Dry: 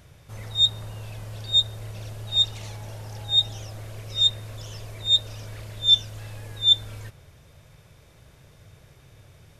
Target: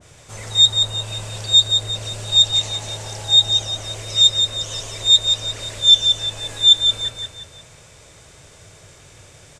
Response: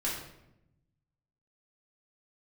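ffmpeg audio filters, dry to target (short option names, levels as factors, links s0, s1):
-filter_complex "[0:a]lowpass=f=7800:t=q:w=3.6,asplit=2[s0][s1];[s1]alimiter=limit=0.2:level=0:latency=1:release=114,volume=1.26[s2];[s0][s2]amix=inputs=2:normalize=0,bass=f=250:g=-7,treble=f=4000:g=0,bandreject=f=65.77:t=h:w=4,bandreject=f=131.54:t=h:w=4,bandreject=f=197.31:t=h:w=4,bandreject=f=263.08:t=h:w=4,bandreject=f=328.85:t=h:w=4,bandreject=f=394.62:t=h:w=4,bandreject=f=460.39:t=h:w=4,bandreject=f=526.16:t=h:w=4,bandreject=f=591.93:t=h:w=4,bandreject=f=657.7:t=h:w=4,bandreject=f=723.47:t=h:w=4,bandreject=f=789.24:t=h:w=4,bandreject=f=855.01:t=h:w=4,bandreject=f=920.78:t=h:w=4,bandreject=f=986.55:t=h:w=4,bandreject=f=1052.32:t=h:w=4,bandreject=f=1118.09:t=h:w=4,bandreject=f=1183.86:t=h:w=4,bandreject=f=1249.63:t=h:w=4,bandreject=f=1315.4:t=h:w=4,bandreject=f=1381.17:t=h:w=4,bandreject=f=1446.94:t=h:w=4,bandreject=f=1512.71:t=h:w=4,bandreject=f=1578.48:t=h:w=4,bandreject=f=1644.25:t=h:w=4,bandreject=f=1710.02:t=h:w=4,bandreject=f=1775.79:t=h:w=4,asplit=2[s3][s4];[s4]aecho=0:1:176|352|528|704|880:0.562|0.236|0.0992|0.0417|0.0175[s5];[s3][s5]amix=inputs=2:normalize=0,adynamicequalizer=threshold=0.0355:dfrequency=1600:dqfactor=0.7:tfrequency=1600:tqfactor=0.7:attack=5:release=100:ratio=0.375:range=2:mode=cutabove:tftype=highshelf,volume=1.12"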